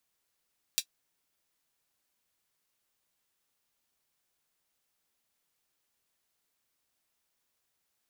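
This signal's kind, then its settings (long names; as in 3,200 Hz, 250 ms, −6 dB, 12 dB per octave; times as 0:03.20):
closed synth hi-hat, high-pass 3,500 Hz, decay 0.08 s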